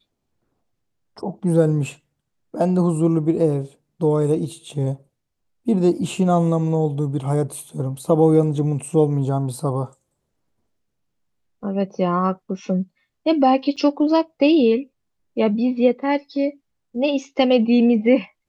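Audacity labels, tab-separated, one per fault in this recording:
13.760000	13.770000	gap 7 ms

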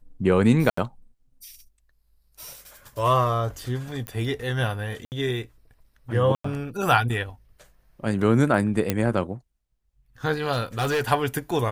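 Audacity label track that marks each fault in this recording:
0.700000	0.770000	gap 74 ms
4.070000	4.070000	pop -16 dBFS
5.050000	5.120000	gap 69 ms
6.350000	6.440000	gap 94 ms
8.900000	8.900000	pop -7 dBFS
10.520000	11.120000	clipped -20 dBFS

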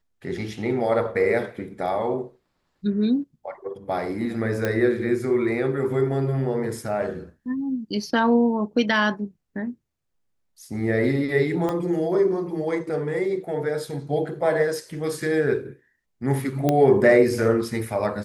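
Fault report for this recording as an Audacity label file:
4.650000	4.650000	pop -11 dBFS
11.690000	11.690000	pop -15 dBFS
16.690000	16.690000	pop -8 dBFS

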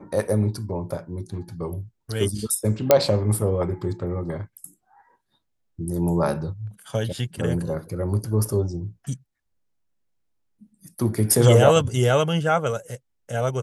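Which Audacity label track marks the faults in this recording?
2.910000	2.910000	pop 0 dBFS

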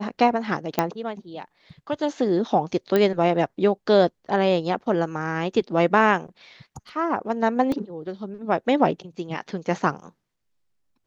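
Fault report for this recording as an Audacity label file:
0.790000	0.790000	pop -6 dBFS
2.960000	2.960000	pop -9 dBFS
7.720000	7.720000	gap 2.3 ms

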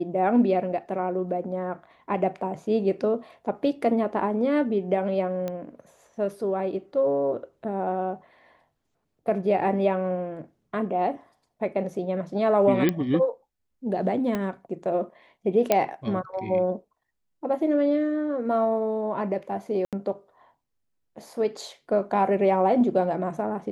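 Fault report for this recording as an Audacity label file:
5.480000	5.480000	pop -18 dBFS
12.890000	12.890000	pop -10 dBFS
14.350000	14.350000	pop -15 dBFS
15.720000	15.720000	pop -6 dBFS
19.850000	19.930000	gap 77 ms

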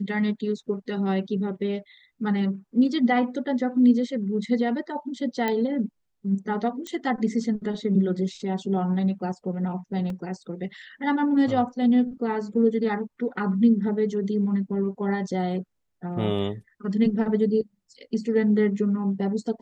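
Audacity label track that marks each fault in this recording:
5.480000	5.480000	pop -13 dBFS
6.870000	6.870000	pop -20 dBFS
10.100000	10.100000	gap 2.1 ms

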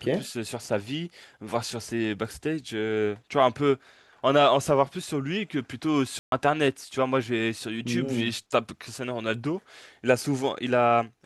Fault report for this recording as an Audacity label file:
6.190000	6.320000	gap 0.132 s

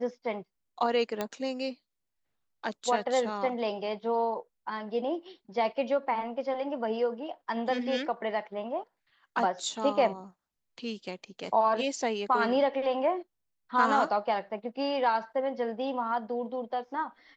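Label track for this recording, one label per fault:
1.210000	1.210000	pop -16 dBFS

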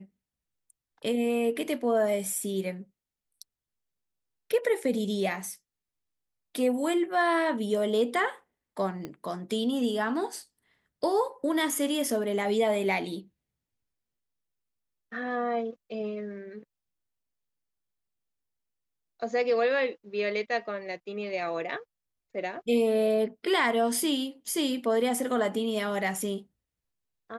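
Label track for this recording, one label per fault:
9.050000	9.050000	pop -23 dBFS

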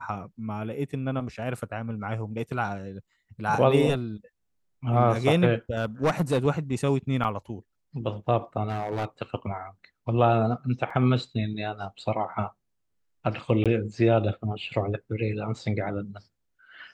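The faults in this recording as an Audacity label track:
1.570000	1.570000	gap 2.8 ms
5.770000	6.470000	clipped -18 dBFS
7.240000	7.250000	gap 6.4 ms
8.680000	9.050000	clipped -25 dBFS
10.900000	10.900000	gap 4.5 ms
13.640000	13.660000	gap 17 ms

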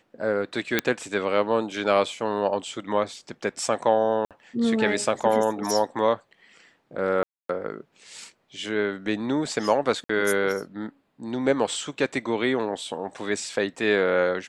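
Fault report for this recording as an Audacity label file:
0.790000	0.790000	pop -6 dBFS
4.250000	4.310000	gap 57 ms
7.230000	7.490000	gap 0.263 s
10.040000	10.090000	gap 54 ms

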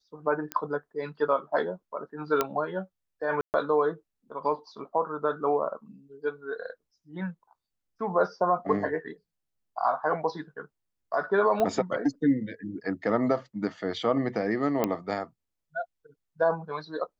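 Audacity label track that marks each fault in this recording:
0.520000	0.520000	pop -15 dBFS
2.410000	2.410000	pop -10 dBFS
3.410000	3.540000	gap 0.129 s
11.600000	11.600000	pop -15 dBFS
14.840000	14.840000	pop -11 dBFS

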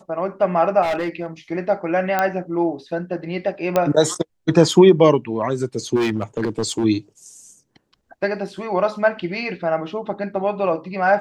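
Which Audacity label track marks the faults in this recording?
0.820000	1.260000	clipped -18.5 dBFS
2.190000	2.190000	pop -6 dBFS
3.760000	3.760000	pop -5 dBFS
5.950000	6.850000	clipped -16.5 dBFS

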